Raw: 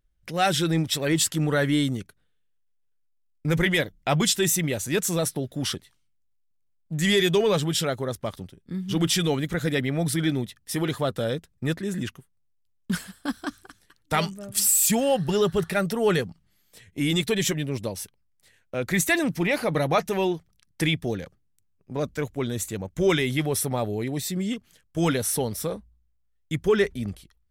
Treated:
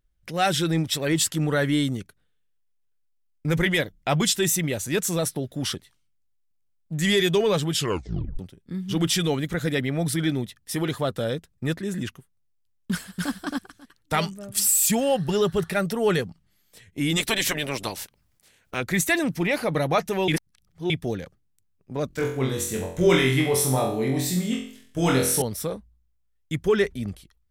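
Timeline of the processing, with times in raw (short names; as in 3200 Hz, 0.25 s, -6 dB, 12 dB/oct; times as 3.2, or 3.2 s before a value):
7.75 tape stop 0.64 s
12.91–13.31 echo throw 0.27 s, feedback 10%, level -1 dB
17.16–18.8 spectral limiter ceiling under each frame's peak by 20 dB
20.28–20.9 reverse
22.08–25.42 flutter echo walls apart 3.9 m, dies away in 0.54 s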